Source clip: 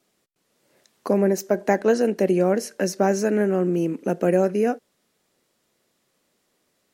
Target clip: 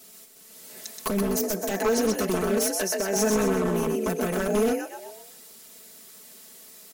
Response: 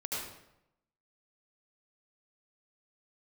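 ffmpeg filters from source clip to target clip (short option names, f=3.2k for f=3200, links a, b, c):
-filter_complex "[0:a]aemphasis=mode=production:type=75kf,alimiter=limit=-13.5dB:level=0:latency=1:release=38,acompressor=threshold=-35dB:ratio=4,asettb=1/sr,asplit=3[a][b][c];[a]atrim=end=2.734[d];[b]atrim=start=2.73:end=3.16,asetpts=PTS-STARTPTS,afade=t=in:d=0.004:c=qsin,afade=t=out:st=0.426:d=0.004:c=qsin,bass=f=250:g=-13,treble=f=4k:g=-5[e];[c]atrim=start=3.156[f];[d][e]acrossfade=d=0.004:c1=hsin:c2=qsin[g];[g][f]acrossfade=d=0.004:c1=qsin:c2=hsin,asplit=6[h][i][j][k][l][m];[i]adelay=126,afreqshift=52,volume=-4.5dB[n];[j]adelay=252,afreqshift=104,volume=-12dB[o];[k]adelay=378,afreqshift=156,volume=-19.6dB[p];[l]adelay=504,afreqshift=208,volume=-27.1dB[q];[m]adelay=630,afreqshift=260,volume=-34.6dB[r];[h][n][o][p][q][r]amix=inputs=6:normalize=0,aeval=exprs='0.0316*(abs(mod(val(0)/0.0316+3,4)-2)-1)':c=same,asettb=1/sr,asplit=3[s][t][u];[s]atrim=end=1.094[v];[t]atrim=start=1.09:end=1.71,asetpts=PTS-STARTPTS,afade=t=in:d=0.004:c=qsin,afade=t=out:st=0.616:d=0.004:c=qsin,acrossover=split=310|3000[w][x][y];[x]acompressor=threshold=-44dB:ratio=2.5[z];[w][z][y]amix=inputs=3:normalize=0[aa];[u]atrim=start=1.706[ab];[v][aa]acrossfade=d=0.004:c1=hsin:c2=qsin[ac];[ac][ab]acrossfade=d=0.004:c1=qsin:c2=hsin,aecho=1:1:4.6:0.88,volume=9dB"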